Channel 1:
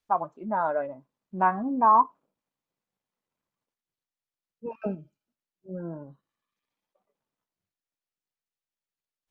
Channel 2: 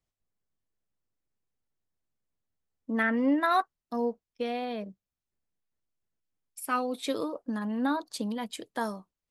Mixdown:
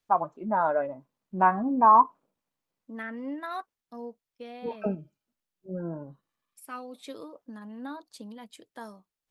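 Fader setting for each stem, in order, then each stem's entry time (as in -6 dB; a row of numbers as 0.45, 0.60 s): +1.5, -10.5 dB; 0.00, 0.00 s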